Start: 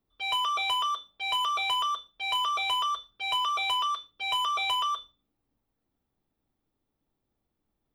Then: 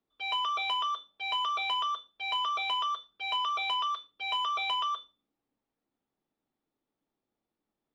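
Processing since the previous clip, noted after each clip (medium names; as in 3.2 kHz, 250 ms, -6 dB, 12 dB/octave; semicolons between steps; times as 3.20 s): three-band isolator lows -15 dB, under 170 Hz, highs -20 dB, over 5.6 kHz; trim -2.5 dB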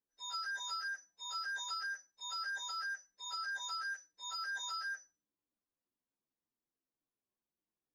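frequency axis rescaled in octaves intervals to 120%; trim -8 dB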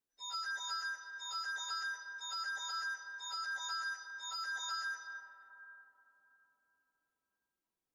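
reverberation RT60 4.0 s, pre-delay 115 ms, DRR 6.5 dB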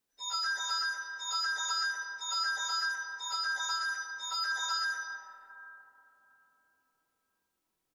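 early reflections 23 ms -8 dB, 76 ms -8 dB; trim +7 dB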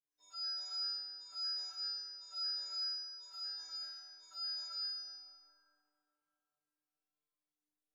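feedback comb 150 Hz, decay 1.1 s, harmonics all, mix 100%; trim +2.5 dB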